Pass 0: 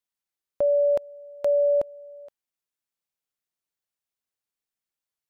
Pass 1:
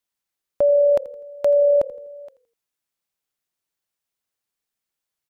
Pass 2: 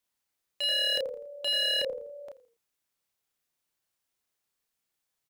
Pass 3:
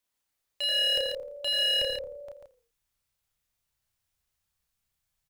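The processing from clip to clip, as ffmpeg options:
ffmpeg -i in.wav -filter_complex "[0:a]asplit=4[link_01][link_02][link_03][link_04];[link_02]adelay=83,afreqshift=-37,volume=-19.5dB[link_05];[link_03]adelay=166,afreqshift=-74,volume=-28.1dB[link_06];[link_04]adelay=249,afreqshift=-111,volume=-36.8dB[link_07];[link_01][link_05][link_06][link_07]amix=inputs=4:normalize=0,volume=5dB" out.wav
ffmpeg -i in.wav -filter_complex "[0:a]aeval=exprs='0.0596*(abs(mod(val(0)/0.0596+3,4)-2)-1)':channel_layout=same,asplit=2[link_01][link_02];[link_02]adelay=32,volume=-4dB[link_03];[link_01][link_03]amix=inputs=2:normalize=0" out.wav
ffmpeg -i in.wav -af "asubboost=boost=11:cutoff=97,aecho=1:1:141:0.531" out.wav

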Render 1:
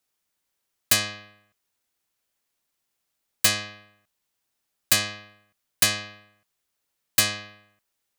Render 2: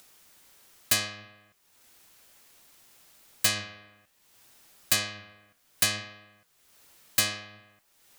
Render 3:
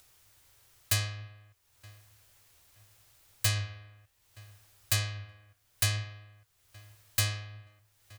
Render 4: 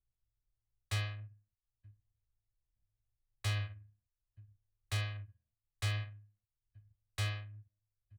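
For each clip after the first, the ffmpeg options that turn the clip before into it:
ffmpeg -i in.wav -filter_complex "[0:a]flanger=delay=4.9:depth=9.4:regen=82:speed=0.63:shape=triangular,asplit=2[link_01][link_02];[link_02]acompressor=mode=upward:threshold=-29dB:ratio=2.5,volume=1.5dB[link_03];[link_01][link_03]amix=inputs=2:normalize=0,volume=-6.5dB" out.wav
ffmpeg -i in.wav -filter_complex "[0:a]lowshelf=frequency=140:width_type=q:width=3:gain=10,asplit=2[link_01][link_02];[link_02]adelay=922,lowpass=frequency=2000:poles=1,volume=-21.5dB,asplit=2[link_03][link_04];[link_04]adelay=922,lowpass=frequency=2000:poles=1,volume=0.31[link_05];[link_01][link_03][link_05]amix=inputs=3:normalize=0,volume=-5dB" out.wav
ffmpeg -i in.wav -filter_complex "[0:a]anlmdn=0.0631,lowpass=frequency=3700:width=0.5412,lowpass=frequency=3700:width=1.3066,acrossover=split=140[link_01][link_02];[link_02]aeval=exprs='0.0266*(abs(mod(val(0)/0.0266+3,4)-2)-1)':channel_layout=same[link_03];[link_01][link_03]amix=inputs=2:normalize=0,volume=-3dB" out.wav

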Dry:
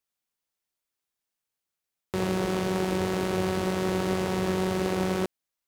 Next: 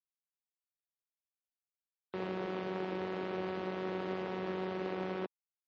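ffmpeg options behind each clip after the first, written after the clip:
ffmpeg -i in.wav -filter_complex "[0:a]afftfilt=real='re*gte(hypot(re,im),0.01)':imag='im*gte(hypot(re,im),0.01)':win_size=1024:overlap=0.75,acrossover=split=180 4200:gain=0.158 1 0.0794[link_01][link_02][link_03];[link_01][link_02][link_03]amix=inputs=3:normalize=0,volume=-9dB" out.wav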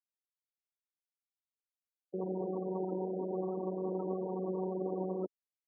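ffmpeg -i in.wav -af "afftfilt=real='re*gte(hypot(re,im),0.0282)':imag='im*gte(hypot(re,im),0.0282)':win_size=1024:overlap=0.75,volume=2.5dB" out.wav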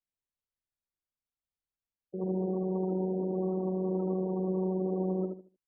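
ffmpeg -i in.wav -filter_complex "[0:a]aemphasis=mode=reproduction:type=bsi,asplit=2[link_01][link_02];[link_02]adelay=75,lowpass=frequency=1000:poles=1,volume=-3.5dB,asplit=2[link_03][link_04];[link_04]adelay=75,lowpass=frequency=1000:poles=1,volume=0.29,asplit=2[link_05][link_06];[link_06]adelay=75,lowpass=frequency=1000:poles=1,volume=0.29,asplit=2[link_07][link_08];[link_08]adelay=75,lowpass=frequency=1000:poles=1,volume=0.29[link_09];[link_01][link_03][link_05][link_07][link_09]amix=inputs=5:normalize=0,volume=-3dB" out.wav

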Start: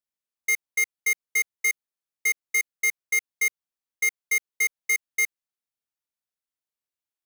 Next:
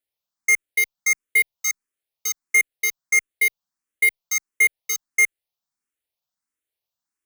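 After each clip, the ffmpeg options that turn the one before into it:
ffmpeg -i in.wav -filter_complex "[0:a]asplit=2[link_01][link_02];[link_02]afreqshift=1.5[link_03];[link_01][link_03]amix=inputs=2:normalize=1,volume=7.5dB" out.wav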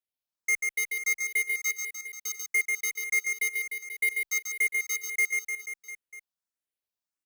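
ffmpeg -i in.wav -af "aecho=1:1:140|301|486.2|699.1|943.9:0.631|0.398|0.251|0.158|0.1,volume=-9dB" out.wav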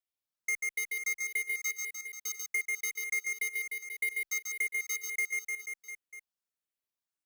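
ffmpeg -i in.wav -af "acompressor=threshold=-28dB:ratio=2.5,volume=-2.5dB" out.wav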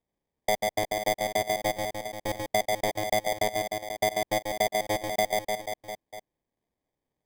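ffmpeg -i in.wav -af "acrusher=samples=32:mix=1:aa=0.000001,volume=6.5dB" out.wav

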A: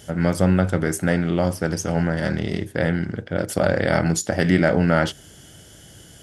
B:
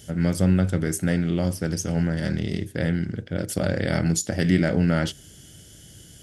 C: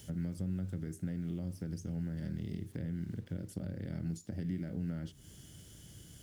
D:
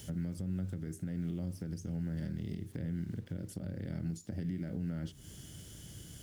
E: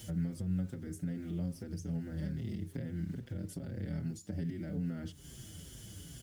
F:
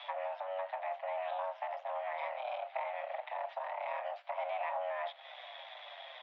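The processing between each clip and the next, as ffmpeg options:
ffmpeg -i in.wav -af "equalizer=frequency=930:width_type=o:width=2.1:gain=-10.5" out.wav
ffmpeg -i in.wav -filter_complex "[0:a]acompressor=threshold=-29dB:ratio=4,acrusher=bits=8:mix=0:aa=0.000001,acrossover=split=330[link_01][link_02];[link_02]acompressor=threshold=-52dB:ratio=3[link_03];[link_01][link_03]amix=inputs=2:normalize=0,volume=-5dB" out.wav
ffmpeg -i in.wav -af "alimiter=level_in=8.5dB:limit=-24dB:level=0:latency=1:release=262,volume=-8.5dB,volume=4dB" out.wav
ffmpeg -i in.wav -filter_complex "[0:a]asplit=2[link_01][link_02];[link_02]adelay=5.9,afreqshift=-2.4[link_03];[link_01][link_03]amix=inputs=2:normalize=1,volume=3.5dB" out.wav
ffmpeg -i in.wav -filter_complex "[0:a]aeval=exprs='if(lt(val(0),0),0.447*val(0),val(0))':channel_layout=same,asplit=2[link_01][link_02];[link_02]highpass=frequency=720:poles=1,volume=19dB,asoftclip=type=tanh:threshold=-25dB[link_03];[link_01][link_03]amix=inputs=2:normalize=0,lowpass=frequency=2400:poles=1,volume=-6dB,highpass=frequency=240:width_type=q:width=0.5412,highpass=frequency=240:width_type=q:width=1.307,lowpass=frequency=3000:width_type=q:width=0.5176,lowpass=frequency=3000:width_type=q:width=0.7071,lowpass=frequency=3000:width_type=q:width=1.932,afreqshift=380,volume=4.5dB" out.wav

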